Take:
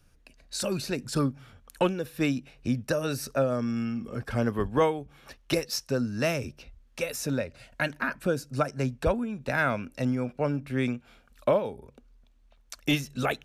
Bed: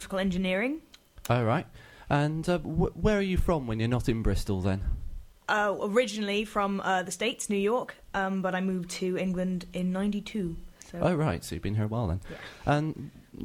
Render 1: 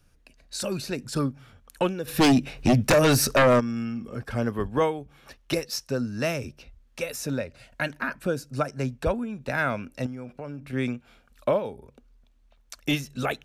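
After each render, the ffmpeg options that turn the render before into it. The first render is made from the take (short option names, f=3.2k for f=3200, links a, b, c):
-filter_complex "[0:a]asplit=3[a][b][c];[a]afade=t=out:st=2.07:d=0.02[d];[b]aeval=exprs='0.2*sin(PI/2*3.16*val(0)/0.2)':c=same,afade=t=in:st=2.07:d=0.02,afade=t=out:st=3.59:d=0.02[e];[c]afade=t=in:st=3.59:d=0.02[f];[d][e][f]amix=inputs=3:normalize=0,asettb=1/sr,asplit=3[g][h][i];[g]atrim=end=10.064[j];[h]atrim=start=10.06:end=10.73,asetpts=PTS-STARTPTS,afade=t=in:d=0.004:c=qsin,afade=t=out:st=0.666:d=0.004:c=qsin,acompressor=threshold=-33dB:ratio=5:attack=3.2:release=140:knee=1:detection=peak[k];[i]atrim=start=10.726[l];[j][k]acrossfade=d=0.004:c1=hsin:c2=qsin[m];[m][l]acrossfade=d=0.004:c1=qsin:c2=hsin"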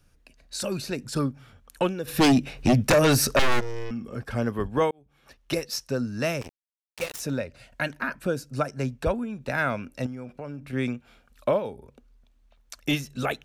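-filter_complex "[0:a]asettb=1/sr,asplit=3[a][b][c];[a]atrim=end=3.394[d];[b]atrim=start=3.39:end=3.91,asetpts=PTS-STARTPTS,afade=t=in:d=0.004:c=qsin,afade=t=out:st=0.516:d=0.004:c=qsin,aeval=exprs='abs(val(0))':c=same[e];[c]atrim=start=3.906[f];[d][e]acrossfade=d=0.004:c1=hsin:c2=qsin[g];[g][f]acrossfade=d=0.004:c1=qsin:c2=hsin,asettb=1/sr,asplit=3[h][i][j];[h]atrim=end=6.414[k];[i]atrim=start=6.41:end=7.2,asetpts=PTS-STARTPTS,afade=t=in:d=0.004:c=qsin,afade=t=out:st=0.786:d=0.004:c=qsin,acrusher=bits=4:mix=0:aa=0.5[l];[j]atrim=start=7.196[m];[k][l]acrossfade=d=0.004:c1=hsin:c2=qsin[n];[n][m]acrossfade=d=0.004:c1=qsin:c2=hsin,asplit=2[o][p];[o]atrim=end=4.91,asetpts=PTS-STARTPTS,afade=t=out:st=4.906:d=0.004:c=hsin[q];[p]atrim=start=4.91,asetpts=PTS-STARTPTS,afade=t=in:d=0.71[r];[q][r]concat=n=2:v=0:a=1"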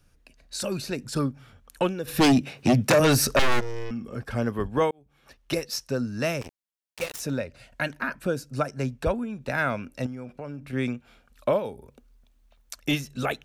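-filter_complex "[0:a]asettb=1/sr,asplit=3[a][b][c];[a]atrim=end=2.414[d];[b]atrim=start=2.41:end=3,asetpts=PTS-STARTPTS,afade=t=in:d=0.004:c=qsin,afade=t=out:st=0.586:d=0.004:c=qsin,highpass=f=100:w=0.5412,highpass=f=100:w=1.3066[e];[c]atrim=start=2.996[f];[d][e]acrossfade=d=0.004:c1=hsin:c2=qsin[g];[g][f]acrossfade=d=0.004:c1=qsin:c2=hsin,asettb=1/sr,asplit=3[h][i][j];[h]atrim=end=11.514[k];[i]atrim=start=11.51:end=12.76,asetpts=PTS-STARTPTS,afade=t=in:d=0.004:c=qsin,afade=t=out:st=1.246:d=0.004:c=qsin,highshelf=f=8.2k:g=8.5[l];[j]atrim=start=12.756[m];[k][l]acrossfade=d=0.004:c1=hsin:c2=qsin[n];[n][m]acrossfade=d=0.004:c1=qsin:c2=hsin"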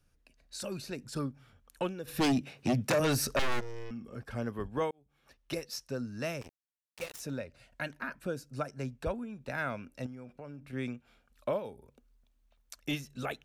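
-af "volume=-9dB"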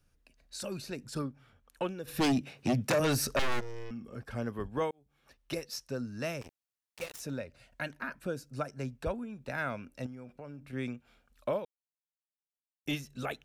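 -filter_complex "[0:a]asettb=1/sr,asplit=3[a][b][c];[a]atrim=end=1.224[d];[b]atrim=start=1.22:end=1.89,asetpts=PTS-STARTPTS,afade=t=in:d=0.004:c=qsin,afade=t=out:st=0.666:d=0.004:c=qsin,bass=f=250:g=-3,treble=f=4k:g=-5[e];[c]atrim=start=1.886[f];[d][e]acrossfade=d=0.004:c1=hsin:c2=qsin[g];[g][f]acrossfade=d=0.004:c1=qsin:c2=hsin,asplit=3[h][i][j];[h]atrim=end=11.65,asetpts=PTS-STARTPTS,afade=t=out:st=11.646:d=0.004:c=hsin[k];[i]atrim=start=11.65:end=12.86,asetpts=PTS-STARTPTS,volume=0[l];[j]atrim=start=12.86,asetpts=PTS-STARTPTS,afade=t=in:d=0.004:c=hsin[m];[k][l][m]concat=n=3:v=0:a=1"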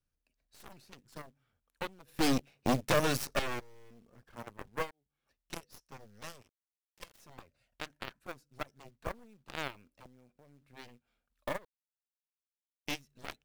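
-af "aeval=exprs='0.158*(cos(1*acos(clip(val(0)/0.158,-1,1)))-cos(1*PI/2))+0.00282*(cos(3*acos(clip(val(0)/0.158,-1,1)))-cos(3*PI/2))+0.0282*(cos(4*acos(clip(val(0)/0.158,-1,1)))-cos(4*PI/2))+0.00126*(cos(6*acos(clip(val(0)/0.158,-1,1)))-cos(6*PI/2))+0.0251*(cos(7*acos(clip(val(0)/0.158,-1,1)))-cos(7*PI/2))':c=same,acrusher=bits=4:mode=log:mix=0:aa=0.000001"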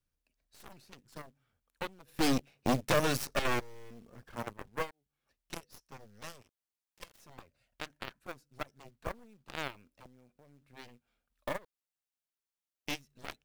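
-filter_complex "[0:a]asplit=3[a][b][c];[a]atrim=end=3.452[d];[b]atrim=start=3.448:end=4.532,asetpts=PTS-STARTPTS,volume=6.5dB[e];[c]atrim=start=4.528[f];[d][e]acrossfade=d=0.004:c1=hsin:c2=hsin[g];[g][f]acrossfade=d=0.004:c1=hsin:c2=hsin"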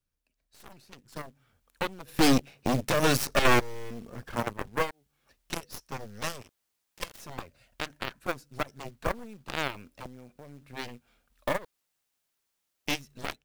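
-af "dynaudnorm=f=880:g=3:m=13dB,alimiter=limit=-13.5dB:level=0:latency=1:release=85"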